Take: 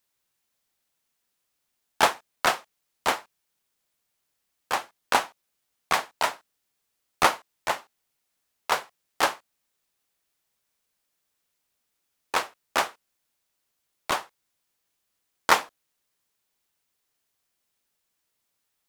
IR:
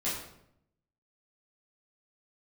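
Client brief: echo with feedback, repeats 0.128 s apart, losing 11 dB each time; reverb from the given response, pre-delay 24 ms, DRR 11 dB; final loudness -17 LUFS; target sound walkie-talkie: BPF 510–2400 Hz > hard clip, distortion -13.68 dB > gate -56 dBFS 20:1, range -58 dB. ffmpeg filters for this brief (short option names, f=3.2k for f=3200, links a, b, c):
-filter_complex "[0:a]aecho=1:1:128|256|384:0.282|0.0789|0.0221,asplit=2[a][b];[1:a]atrim=start_sample=2205,adelay=24[c];[b][c]afir=irnorm=-1:irlink=0,volume=-17dB[d];[a][d]amix=inputs=2:normalize=0,highpass=510,lowpass=2.4k,asoftclip=type=hard:threshold=-15dB,agate=range=-58dB:threshold=-56dB:ratio=20,volume=12.5dB"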